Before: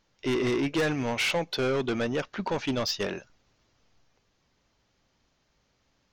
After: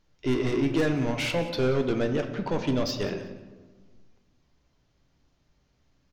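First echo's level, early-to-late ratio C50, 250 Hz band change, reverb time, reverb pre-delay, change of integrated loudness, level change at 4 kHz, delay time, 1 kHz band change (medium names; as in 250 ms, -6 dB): -17.0 dB, 8.5 dB, +3.0 dB, 1.4 s, 3 ms, +1.0 dB, -3.0 dB, 182 ms, -1.5 dB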